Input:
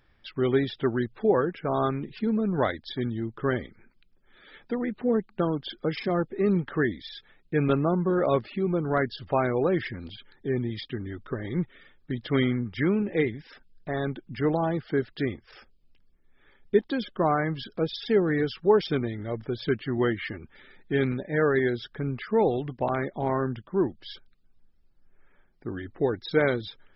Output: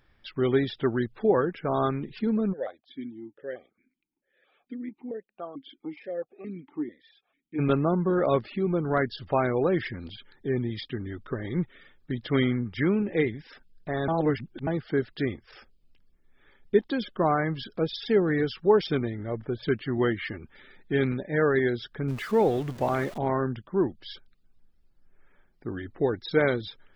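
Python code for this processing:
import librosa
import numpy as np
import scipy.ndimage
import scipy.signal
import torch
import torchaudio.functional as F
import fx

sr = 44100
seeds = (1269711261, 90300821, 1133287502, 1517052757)

y = fx.vowel_held(x, sr, hz=4.5, at=(2.52, 7.58), fade=0.02)
y = fx.lowpass(y, sr, hz=2200.0, slope=12, at=(19.09, 19.62), fade=0.02)
y = fx.zero_step(y, sr, step_db=-38.5, at=(22.08, 23.18))
y = fx.edit(y, sr, fx.reverse_span(start_s=14.08, length_s=0.59), tone=tone)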